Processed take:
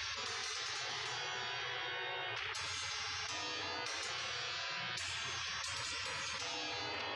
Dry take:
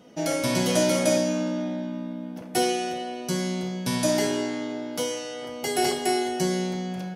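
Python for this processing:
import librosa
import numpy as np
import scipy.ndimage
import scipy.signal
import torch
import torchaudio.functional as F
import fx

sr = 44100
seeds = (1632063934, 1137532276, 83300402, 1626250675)

y = fx.cabinet(x, sr, low_hz=100.0, low_slope=24, high_hz=4300.0, hz=(110.0, 190.0, 470.0), db=(-4, 5, -10))
y = fx.rev_spring(y, sr, rt60_s=1.1, pass_ms=(34, 55), chirp_ms=75, drr_db=2.0)
y = fx.spec_gate(y, sr, threshold_db=-30, keep='weak')
y = fx.env_flatten(y, sr, amount_pct=100)
y = y * librosa.db_to_amplitude(-5.0)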